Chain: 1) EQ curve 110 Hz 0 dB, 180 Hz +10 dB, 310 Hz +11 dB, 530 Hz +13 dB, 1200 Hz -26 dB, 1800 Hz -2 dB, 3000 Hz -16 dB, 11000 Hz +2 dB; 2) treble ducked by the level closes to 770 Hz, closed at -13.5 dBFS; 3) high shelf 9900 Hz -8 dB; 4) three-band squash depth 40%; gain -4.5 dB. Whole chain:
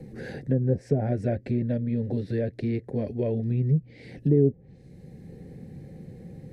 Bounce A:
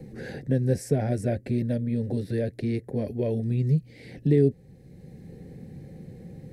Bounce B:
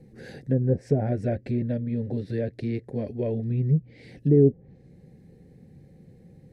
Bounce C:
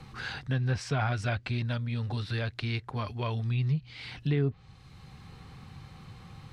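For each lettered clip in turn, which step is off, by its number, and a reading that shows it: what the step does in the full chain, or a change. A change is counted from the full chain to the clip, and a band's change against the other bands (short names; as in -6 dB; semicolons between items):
2, 2 kHz band +1.5 dB; 4, momentary loudness spread change -9 LU; 1, loudness change -5.0 LU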